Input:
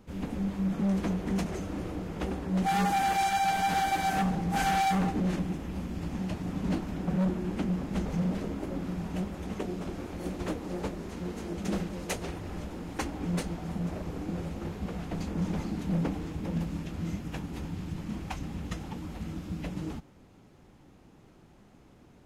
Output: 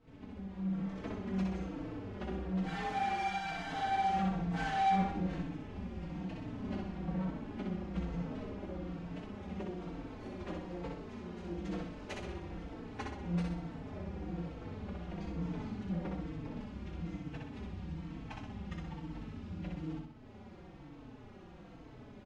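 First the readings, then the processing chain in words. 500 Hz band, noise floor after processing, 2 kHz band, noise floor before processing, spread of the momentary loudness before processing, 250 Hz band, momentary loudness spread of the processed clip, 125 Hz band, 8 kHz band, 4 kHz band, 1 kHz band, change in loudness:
−7.0 dB, −53 dBFS, −7.0 dB, −57 dBFS, 11 LU, −7.0 dB, 12 LU, −7.0 dB, −17.5 dB, −9.0 dB, −6.0 dB, −7.0 dB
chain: fade in at the beginning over 0.95 s
low-pass filter 4,000 Hz 12 dB per octave
upward compression, threshold −33 dBFS
on a send: repeating echo 63 ms, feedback 47%, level −3 dB
on the sum: barber-pole flanger 4 ms −1.1 Hz
level −6 dB

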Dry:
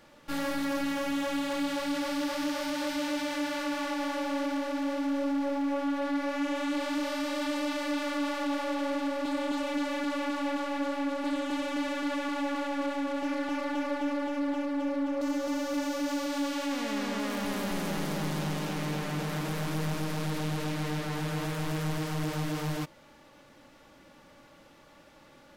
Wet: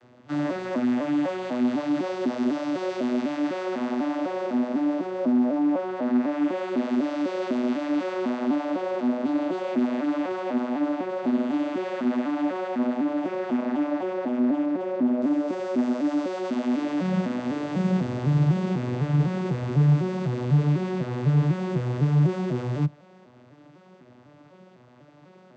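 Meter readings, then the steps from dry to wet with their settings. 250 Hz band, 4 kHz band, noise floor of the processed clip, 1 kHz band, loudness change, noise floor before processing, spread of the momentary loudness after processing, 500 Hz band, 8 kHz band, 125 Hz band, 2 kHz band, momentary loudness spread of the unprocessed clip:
+7.0 dB, −6.0 dB, −53 dBFS, +1.5 dB, +6.0 dB, −56 dBFS, 6 LU, +5.5 dB, can't be measured, +12.0 dB, −2.0 dB, 2 LU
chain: vocoder with an arpeggio as carrier minor triad, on B2, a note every 250 ms
level +7.5 dB

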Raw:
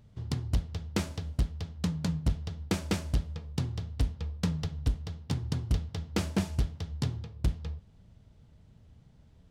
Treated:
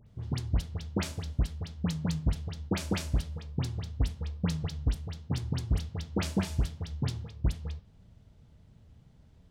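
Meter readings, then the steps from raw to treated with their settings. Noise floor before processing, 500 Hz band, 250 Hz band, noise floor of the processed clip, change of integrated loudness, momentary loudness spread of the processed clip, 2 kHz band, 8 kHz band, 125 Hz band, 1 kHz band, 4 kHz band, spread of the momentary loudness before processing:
−59 dBFS, 0.0 dB, 0.0 dB, −59 dBFS, 0.0 dB, 5 LU, 0.0 dB, 0.0 dB, 0.0 dB, 0.0 dB, 0.0 dB, 4 LU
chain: all-pass dispersion highs, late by 69 ms, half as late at 1,800 Hz

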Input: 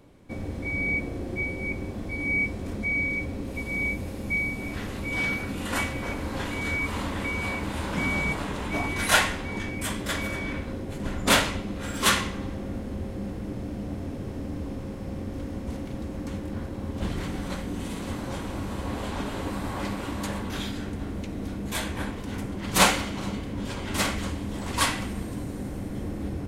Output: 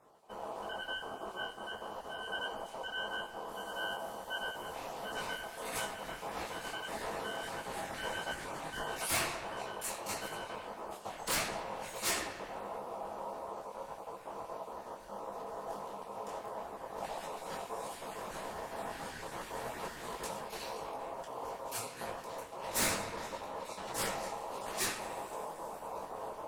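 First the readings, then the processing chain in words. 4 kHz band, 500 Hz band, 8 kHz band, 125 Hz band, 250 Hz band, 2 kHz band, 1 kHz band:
−10.0 dB, −6.0 dB, −7.0 dB, −21.5 dB, −19.0 dB, −12.5 dB, −6.0 dB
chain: time-frequency cells dropped at random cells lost 26%
high-shelf EQ 5,100 Hz +9.5 dB
in parallel at −7 dB: soft clipping −16.5 dBFS, distortion −12 dB
on the sum: ring modulation 740 Hz
on a send: feedback echo with a low-pass in the loop 71 ms, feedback 80%, low-pass 4,500 Hz, level −12 dB
on the sum: dynamic equaliser 3,100 Hz, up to −5 dB, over −42 dBFS, Q 2.8
hard clipping −16.5 dBFS, distortion −14 dB
micro pitch shift up and down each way 54 cents
level −6.5 dB

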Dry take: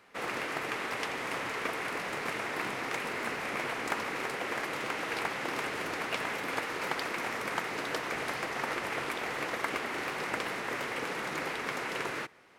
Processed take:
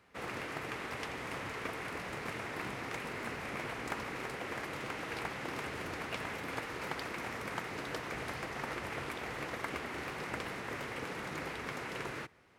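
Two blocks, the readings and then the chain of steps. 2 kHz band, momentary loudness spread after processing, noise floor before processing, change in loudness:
−6.5 dB, 1 LU, −38 dBFS, −6.0 dB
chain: parametric band 68 Hz +14.5 dB 2.4 octaves
level −6.5 dB

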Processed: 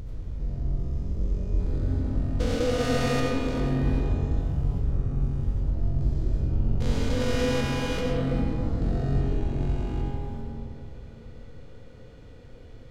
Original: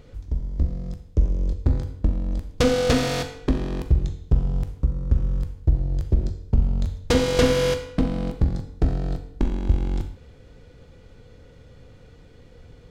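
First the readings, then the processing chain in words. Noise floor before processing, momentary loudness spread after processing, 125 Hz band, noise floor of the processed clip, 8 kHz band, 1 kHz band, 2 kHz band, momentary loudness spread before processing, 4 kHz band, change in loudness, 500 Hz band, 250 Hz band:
−49 dBFS, 11 LU, −2.0 dB, −45 dBFS, −6.0 dB, −2.0 dB, −3.0 dB, 8 LU, −5.5 dB, −3.5 dB, −4.5 dB, −2.0 dB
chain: spectrum averaged block by block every 400 ms
brickwall limiter −18 dBFS, peak gain reduction 6.5 dB
comb and all-pass reverb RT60 3.1 s, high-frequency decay 0.3×, pre-delay 50 ms, DRR −2.5 dB
level −2.5 dB

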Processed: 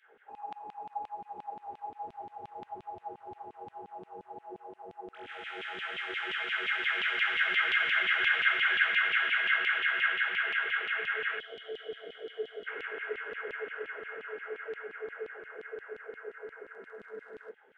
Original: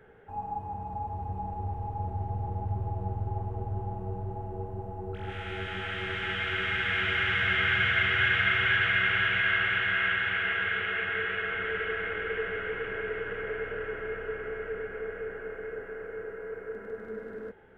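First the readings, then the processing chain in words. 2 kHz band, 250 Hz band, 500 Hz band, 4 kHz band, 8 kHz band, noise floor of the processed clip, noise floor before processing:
−2.0 dB, below −10 dB, −6.5 dB, −1.5 dB, can't be measured, −62 dBFS, −43 dBFS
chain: downsampling to 22,050 Hz
low-shelf EQ 410 Hz −8.5 dB
auto-filter high-pass saw down 5.7 Hz 210–3,200 Hz
gain on a spectral selection 0:11.39–0:12.67, 780–2,900 Hz −18 dB
level −4 dB

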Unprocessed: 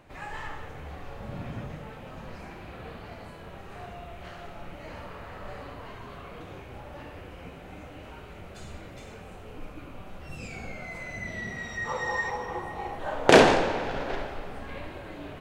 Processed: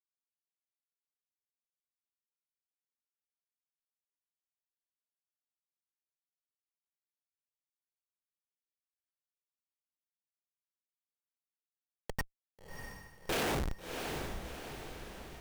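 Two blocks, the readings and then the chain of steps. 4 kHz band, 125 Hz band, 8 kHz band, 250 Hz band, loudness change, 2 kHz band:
−11.5 dB, −10.5 dB, −7.5 dB, −15.0 dB, −11.5 dB, −15.5 dB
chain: meter weighting curve D
comparator with hysteresis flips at −17 dBFS
feedback delay with all-pass diffusion 667 ms, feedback 54%, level −5.5 dB
level −3.5 dB

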